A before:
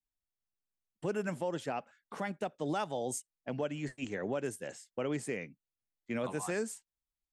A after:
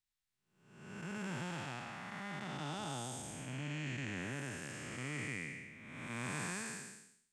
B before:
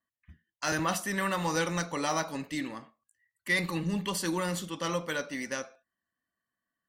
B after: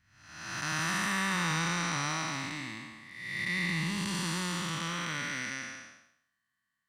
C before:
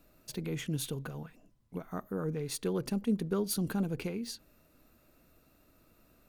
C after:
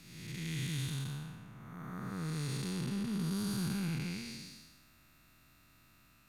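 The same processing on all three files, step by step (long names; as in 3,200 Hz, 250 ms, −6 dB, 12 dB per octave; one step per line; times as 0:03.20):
spectrum smeared in time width 494 ms
octave-band graphic EQ 125/500/1,000/2,000/4,000/8,000 Hz +6/−12/+4/+8/+6/+5 dB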